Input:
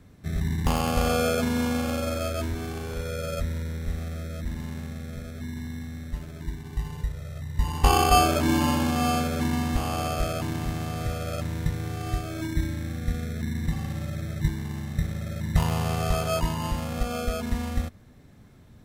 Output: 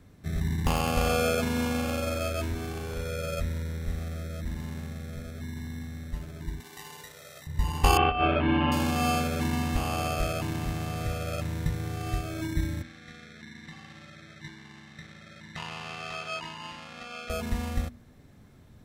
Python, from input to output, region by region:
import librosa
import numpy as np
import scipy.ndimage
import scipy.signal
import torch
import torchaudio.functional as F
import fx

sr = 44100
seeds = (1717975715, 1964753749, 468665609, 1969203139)

y = fx.chain(x, sr, fx.highpass(hz=390.0, slope=12),
    fx.high_shelf(hz=2300.0, db=7.5), at=(6.6, 7.47))
y = fx.chain(y, sr, fx.ellip_lowpass(hz=3100.0, order=4, stop_db=80),
    fx.over_compress(threshold_db=-21.0, ratio=-0.5), at=(7.97, 8.72))
y = fx.chain(y, sr, fx.bandpass_edges(low_hz=350.0, high_hz=4200.0),
    fx.peak_eq(hz=530.0, db=-12.5, octaves=1.8), at=(12.82, 17.3))
y = fx.hum_notches(y, sr, base_hz=60, count=4)
y = fx.dynamic_eq(y, sr, hz=2600.0, q=6.0, threshold_db=-52.0, ratio=4.0, max_db=5)
y = y * 10.0 ** (-1.5 / 20.0)